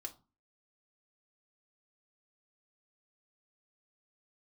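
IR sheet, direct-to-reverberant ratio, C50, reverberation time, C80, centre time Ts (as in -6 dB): 1.5 dB, 17.0 dB, 0.35 s, 23.0 dB, 8 ms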